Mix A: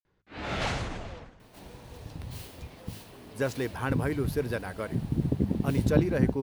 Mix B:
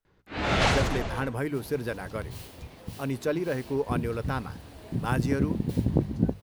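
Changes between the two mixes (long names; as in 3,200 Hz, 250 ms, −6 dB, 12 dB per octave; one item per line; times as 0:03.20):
speech: entry −2.65 s
first sound +7.5 dB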